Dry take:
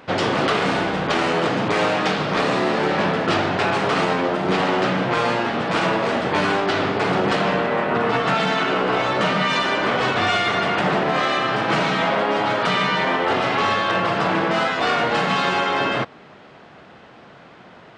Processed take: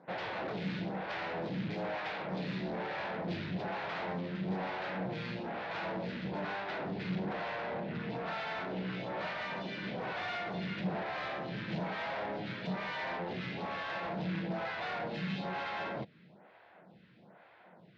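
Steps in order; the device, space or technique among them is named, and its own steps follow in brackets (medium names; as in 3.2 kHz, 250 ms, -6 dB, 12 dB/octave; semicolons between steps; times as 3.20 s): vibe pedal into a guitar amplifier (lamp-driven phase shifter 1.1 Hz; valve stage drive 25 dB, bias 0.55; cabinet simulation 92–4000 Hz, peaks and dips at 180 Hz +8 dB, 260 Hz -6 dB, 410 Hz -5 dB, 1.2 kHz -8 dB, 3 kHz -5 dB); trim -7.5 dB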